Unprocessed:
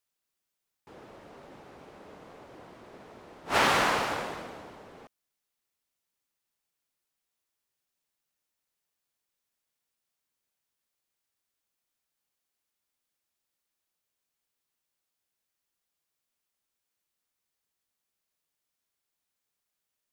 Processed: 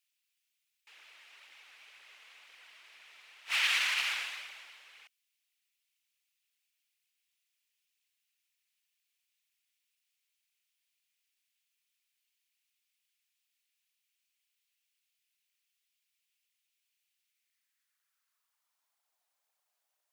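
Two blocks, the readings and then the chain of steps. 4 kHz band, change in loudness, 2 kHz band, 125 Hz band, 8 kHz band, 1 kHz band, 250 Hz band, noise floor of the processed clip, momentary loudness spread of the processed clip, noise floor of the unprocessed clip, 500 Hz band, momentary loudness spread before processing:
+1.5 dB, −3.0 dB, −1.5 dB, below −30 dB, −2.5 dB, −16.5 dB, below −30 dB, −84 dBFS, 16 LU, −85 dBFS, −28.0 dB, 20 LU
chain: brickwall limiter −20 dBFS, peak gain reduction 8 dB
high-pass filter sweep 2,500 Hz → 700 Hz, 0:17.27–0:19.16
phase shifter 2 Hz, delay 4.8 ms, feedback 39%

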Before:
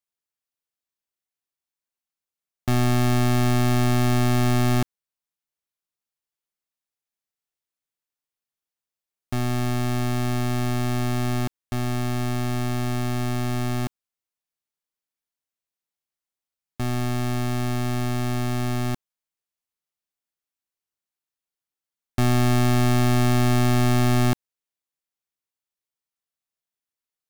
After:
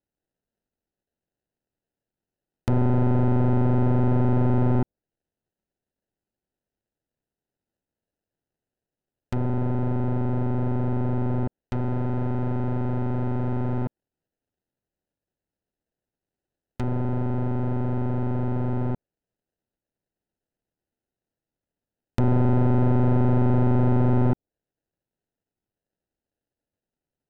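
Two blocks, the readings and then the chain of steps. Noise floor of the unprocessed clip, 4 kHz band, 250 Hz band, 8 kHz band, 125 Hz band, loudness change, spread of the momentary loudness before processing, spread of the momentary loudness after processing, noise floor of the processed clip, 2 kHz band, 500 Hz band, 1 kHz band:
below −85 dBFS, below −20 dB, −0.5 dB, below −25 dB, 0.0 dB, −1.0 dB, 9 LU, 9 LU, below −85 dBFS, −12.5 dB, +0.5 dB, −3.5 dB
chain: decimation without filtering 39×
treble cut that deepens with the level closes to 860 Hz, closed at −24 dBFS

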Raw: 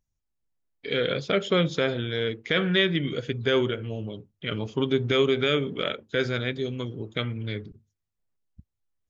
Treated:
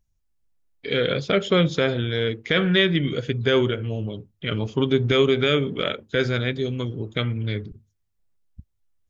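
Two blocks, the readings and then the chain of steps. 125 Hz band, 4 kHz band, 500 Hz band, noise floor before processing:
+5.5 dB, +3.0 dB, +3.5 dB, −82 dBFS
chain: low-shelf EQ 96 Hz +8 dB
level +3 dB

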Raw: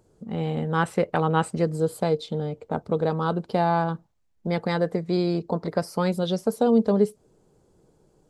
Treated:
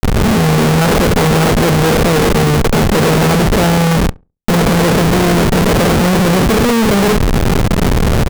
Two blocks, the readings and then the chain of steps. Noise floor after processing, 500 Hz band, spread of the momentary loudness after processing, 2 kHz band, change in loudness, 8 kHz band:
−21 dBFS, +11.0 dB, 3 LU, +18.0 dB, +13.5 dB, +24.5 dB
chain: compressor on every frequency bin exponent 0.4
low-shelf EQ 86 Hz +10.5 dB
in parallel at −2 dB: brickwall limiter −13.5 dBFS, peak gain reduction 10.5 dB
on the sum: multiband delay without the direct sound highs, lows 30 ms, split 4,100 Hz
comparator with hysteresis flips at −21.5 dBFS
on a send: feedback echo with a low-pass in the loop 69 ms, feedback 20%, low-pass 1,100 Hz, level −23.5 dB
on the sum: level +5.5 dB

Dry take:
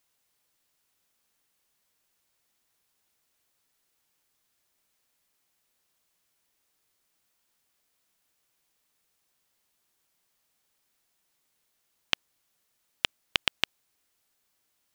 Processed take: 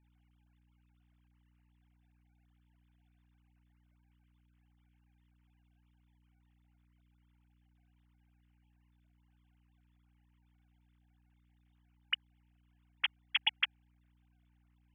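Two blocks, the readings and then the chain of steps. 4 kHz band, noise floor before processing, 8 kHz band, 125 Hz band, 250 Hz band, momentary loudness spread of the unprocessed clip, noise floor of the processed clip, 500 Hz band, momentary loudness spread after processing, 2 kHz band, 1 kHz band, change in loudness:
−4.0 dB, −76 dBFS, below −30 dB, −7.5 dB, −15.0 dB, 4 LU, −71 dBFS, below −25 dB, 6 LU, −3.0 dB, −7.0 dB, −4.0 dB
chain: three sine waves on the formant tracks
mains hum 60 Hz, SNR 22 dB
level −4 dB

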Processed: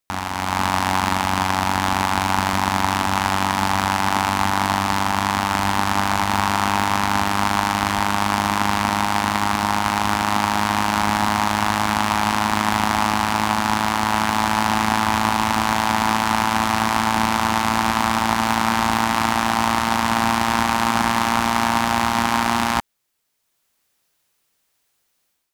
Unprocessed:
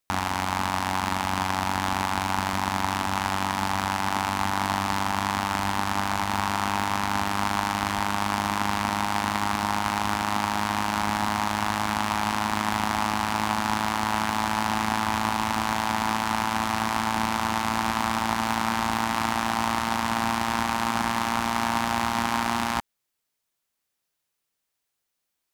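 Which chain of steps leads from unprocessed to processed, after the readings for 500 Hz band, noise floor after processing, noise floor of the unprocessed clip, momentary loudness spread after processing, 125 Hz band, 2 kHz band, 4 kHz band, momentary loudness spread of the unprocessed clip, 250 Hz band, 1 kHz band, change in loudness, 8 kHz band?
+6.0 dB, −70 dBFS, −81 dBFS, 1 LU, +6.0 dB, +6.0 dB, +6.0 dB, 1 LU, +6.0 dB, +6.0 dB, +6.0 dB, +6.0 dB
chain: automatic gain control

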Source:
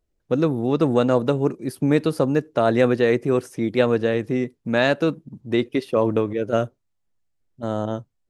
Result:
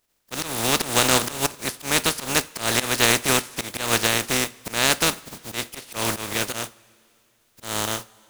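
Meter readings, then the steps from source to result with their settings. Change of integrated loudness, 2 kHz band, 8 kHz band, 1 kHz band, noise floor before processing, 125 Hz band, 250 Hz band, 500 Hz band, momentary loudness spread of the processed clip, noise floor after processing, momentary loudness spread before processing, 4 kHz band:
−0.5 dB, +5.0 dB, can't be measured, +2.0 dB, −73 dBFS, −6.5 dB, −9.0 dB, −9.0 dB, 13 LU, −65 dBFS, 8 LU, +13.0 dB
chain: compressing power law on the bin magnitudes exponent 0.24
volume swells 174 ms
coupled-rooms reverb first 0.3 s, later 2.7 s, from −18 dB, DRR 14.5 dB

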